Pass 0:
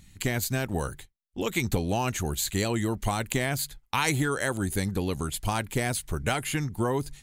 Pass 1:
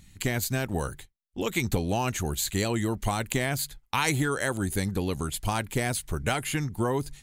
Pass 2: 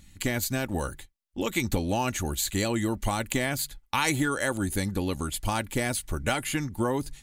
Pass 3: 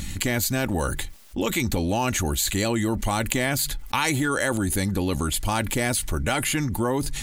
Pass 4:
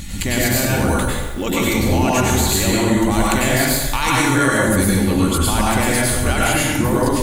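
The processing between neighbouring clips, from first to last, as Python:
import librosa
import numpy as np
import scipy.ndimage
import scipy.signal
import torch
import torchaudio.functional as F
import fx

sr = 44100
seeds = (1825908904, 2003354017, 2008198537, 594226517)

y1 = x
y2 = y1 + 0.33 * np.pad(y1, (int(3.5 * sr / 1000.0), 0))[:len(y1)]
y3 = fx.env_flatten(y2, sr, amount_pct=70)
y4 = fx.rev_plate(y3, sr, seeds[0], rt60_s=1.3, hf_ratio=0.65, predelay_ms=85, drr_db=-6.0)
y4 = F.gain(torch.from_numpy(y4), 1.0).numpy()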